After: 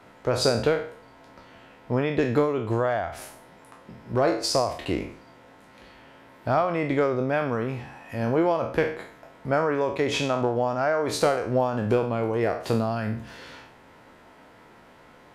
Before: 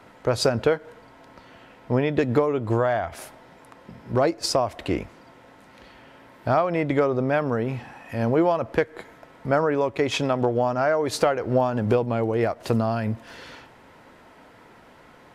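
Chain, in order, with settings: spectral sustain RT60 0.51 s; trim -3 dB

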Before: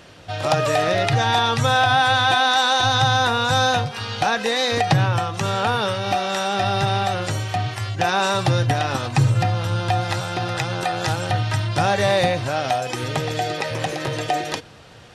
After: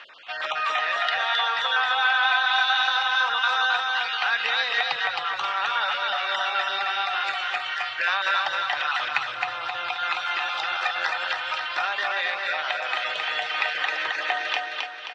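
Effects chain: random holes in the spectrogram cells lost 21%; compression, threshold -22 dBFS, peak gain reduction 9.5 dB; phaser 0.21 Hz, delay 2.9 ms, feedback 28%; Butterworth band-pass 2 kHz, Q 0.83; distance through air 53 m; on a send: feedback delay 265 ms, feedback 46%, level -3 dB; on the sum: trim +6 dB

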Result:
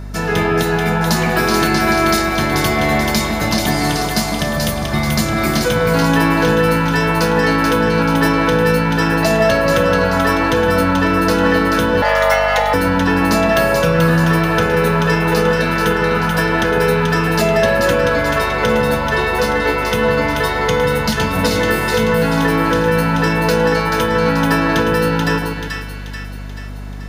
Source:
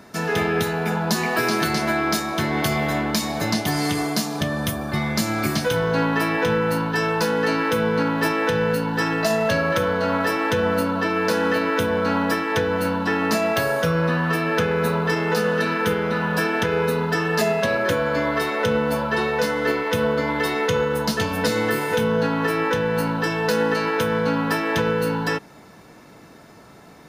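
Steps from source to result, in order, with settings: two-band feedback delay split 1.4 kHz, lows 151 ms, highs 434 ms, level -4 dB; 12.02–12.74 s: frequency shift +370 Hz; hum 50 Hz, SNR 13 dB; trim +4.5 dB

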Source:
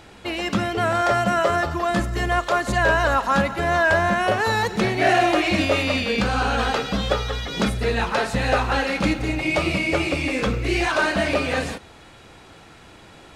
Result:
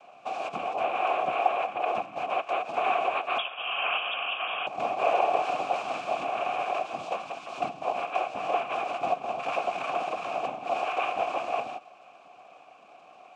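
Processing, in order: in parallel at 0 dB: compression, threshold -27 dBFS, peak gain reduction 12.5 dB; on the sum: noise-vocoded speech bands 4; 3.38–4.67 s: frequency inversion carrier 3.5 kHz; vowel filter a

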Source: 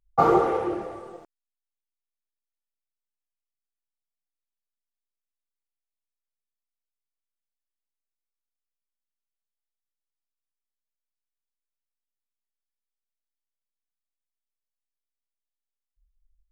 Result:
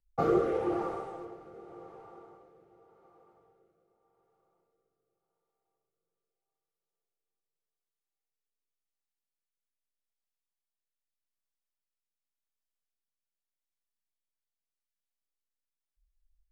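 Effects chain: echo that smears into a reverb 575 ms, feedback 48%, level -14.5 dB; rotary cabinet horn 0.85 Hz; trim -3 dB

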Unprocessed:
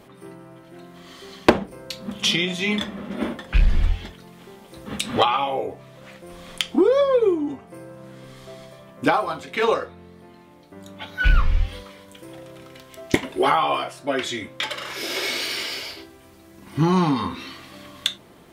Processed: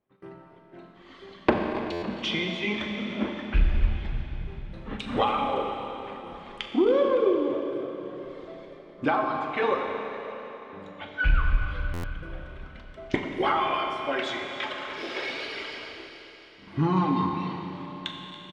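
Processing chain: gate -44 dBFS, range -30 dB; in parallel at 0 dB: peak limiter -14.5 dBFS, peak gain reduction 11 dB; 13.30–14.51 s: on the sum: tilt EQ +2 dB/octave; on a send: frequency-shifting echo 281 ms, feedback 46%, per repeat +39 Hz, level -12.5 dB; on the sum: reverb removal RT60 1.8 s; low-pass 2.7 kHz 12 dB/octave; Schroeder reverb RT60 3.7 s, combs from 29 ms, DRR 2 dB; buffer glitch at 1.92/11.93 s, samples 512, times 8; trim -9 dB

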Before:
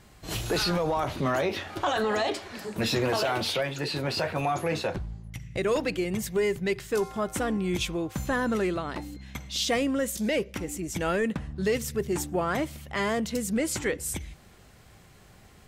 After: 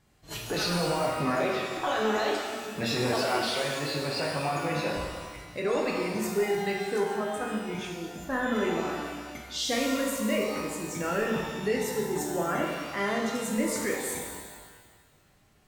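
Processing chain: 7.19–8.32 s: level held to a coarse grid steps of 9 dB; spectral noise reduction 9 dB; pitch-shifted reverb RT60 1.5 s, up +12 st, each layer -8 dB, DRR -1.5 dB; trim -4.5 dB

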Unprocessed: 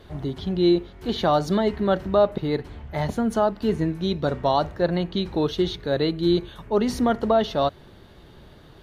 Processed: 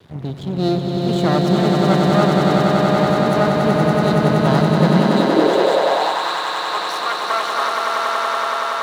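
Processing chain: half-wave rectifier; echo with a slow build-up 94 ms, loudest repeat 8, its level -4 dB; high-pass sweep 120 Hz -> 1.1 kHz, 4.69–6.30 s; trim +2.5 dB

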